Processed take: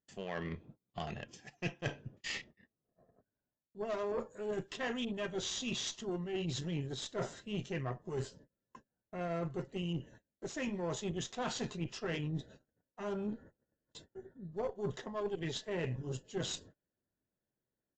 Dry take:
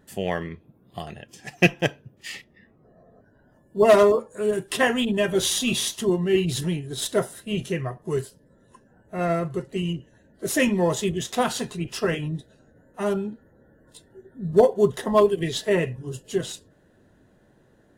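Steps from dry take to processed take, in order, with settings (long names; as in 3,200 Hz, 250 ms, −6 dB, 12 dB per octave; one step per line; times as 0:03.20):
noise gate −51 dBFS, range −31 dB
reversed playback
downward compressor 12 to 1, threshold −33 dBFS, peak gain reduction 23 dB
reversed playback
harmonic generator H 8 −24 dB, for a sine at −19.5 dBFS
downsampling to 16,000 Hz
level −2 dB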